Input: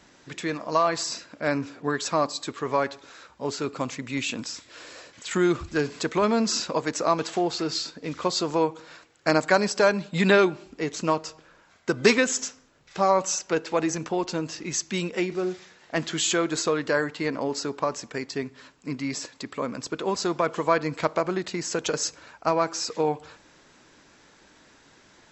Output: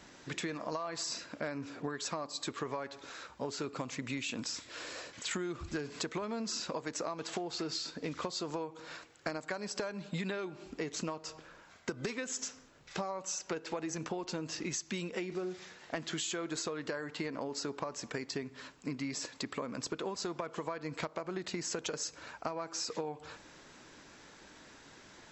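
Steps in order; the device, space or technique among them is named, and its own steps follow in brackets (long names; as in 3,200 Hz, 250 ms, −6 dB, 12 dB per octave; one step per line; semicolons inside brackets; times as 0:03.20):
serial compression, leveller first (downward compressor 2 to 1, threshold −26 dBFS, peak gain reduction 7.5 dB; downward compressor 10 to 1, threshold −34 dBFS, peak gain reduction 15 dB)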